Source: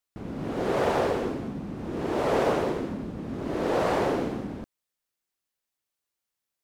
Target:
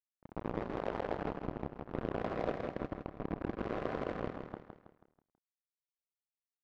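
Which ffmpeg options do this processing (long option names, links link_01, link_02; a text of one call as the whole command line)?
ffmpeg -i in.wav -filter_complex "[0:a]highpass=frequency=160:width=0.5412,highpass=frequency=160:width=1.3066,aecho=1:1:4:0.4,acompressor=threshold=-30dB:ratio=4,flanger=delay=22.5:depth=3.9:speed=2.1,aeval=exprs='val(0)*sin(2*PI*54*n/s)':channel_layout=same,acrusher=bits=4:mix=0:aa=0.5,volume=35.5dB,asoftclip=hard,volume=-35.5dB,adynamicsmooth=sensitivity=3.5:basefreq=900,tremolo=f=170:d=0.75,asettb=1/sr,asplit=3[link_01][link_02][link_03];[link_01]atrim=end=1.984[link_04];[link_02]atrim=start=1.98:end=4.33,asetpts=PTS-STARTPTS,afade=type=in:duration=0.004:curve=qsin,afade=type=out:start_time=2.346:duration=0.004:curve=qsin,asuperstop=centerf=880:order=4:qfactor=7.5[link_05];[link_03]atrim=start=4.326[link_06];[link_04][link_05]acrossfade=duration=0.004:curve1=hsin:curve2=qsin[link_07];[link_07][link_06]acrossfade=duration=0.004:curve1=qsin:curve2=hsin,aecho=1:1:162|324|486|648|810:0.447|0.197|0.0865|0.0381|0.0167,volume=14.5dB" out.wav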